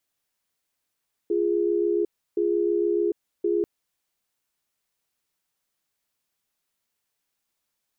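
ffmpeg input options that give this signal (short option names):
-f lavfi -i "aevalsrc='0.0708*(sin(2*PI*346*t)+sin(2*PI*413*t))*clip(min(mod(t,1.07),0.75-mod(t,1.07))/0.005,0,1)':d=2.34:s=44100"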